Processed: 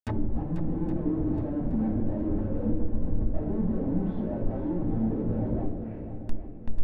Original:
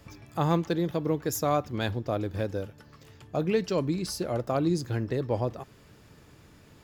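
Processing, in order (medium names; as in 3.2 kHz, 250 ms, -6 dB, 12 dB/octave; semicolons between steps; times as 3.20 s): knee-point frequency compression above 1.7 kHz 1.5:1; low-pass that closes with the level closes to 400 Hz, closed at -21.5 dBFS; high-pass 220 Hz 12 dB/octave; Schmitt trigger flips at -47.5 dBFS; flange 0.89 Hz, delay 3 ms, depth 1.2 ms, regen -50%; reverberation RT60 0.90 s, pre-delay 5 ms, DRR -3.5 dB; low-pass that closes with the level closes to 400 Hz, closed at -29 dBFS; shuffle delay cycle 820 ms, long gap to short 1.5:1, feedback 36%, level -10 dB; trim +3.5 dB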